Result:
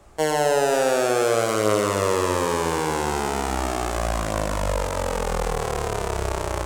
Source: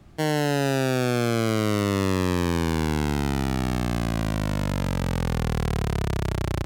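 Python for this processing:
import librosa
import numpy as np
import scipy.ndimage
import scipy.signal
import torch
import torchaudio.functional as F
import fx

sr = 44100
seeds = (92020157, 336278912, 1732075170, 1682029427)

p1 = fx.graphic_eq(x, sr, hz=(125, 250, 500, 1000, 4000, 8000), db=(-11, -8, 7, 5, -3, 9))
p2 = 10.0 ** (-19.0 / 20.0) * np.tanh(p1 / 10.0 ** (-19.0 / 20.0))
p3 = p1 + F.gain(torch.from_numpy(p2), -9.5).numpy()
p4 = fx.doubler(p3, sr, ms=19.0, db=-6)
p5 = fx.echo_split(p4, sr, split_hz=1100.0, low_ms=120, high_ms=529, feedback_pct=52, wet_db=-8.0)
y = F.gain(torch.from_numpy(p5), -1.5).numpy()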